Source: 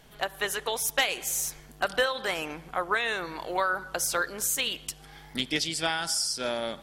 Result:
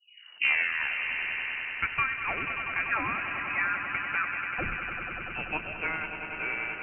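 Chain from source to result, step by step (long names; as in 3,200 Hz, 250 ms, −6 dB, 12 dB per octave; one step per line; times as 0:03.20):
turntable start at the beginning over 1.86 s
echo that builds up and dies away 97 ms, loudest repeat 5, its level −10.5 dB
voice inversion scrambler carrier 2,900 Hz
level −3 dB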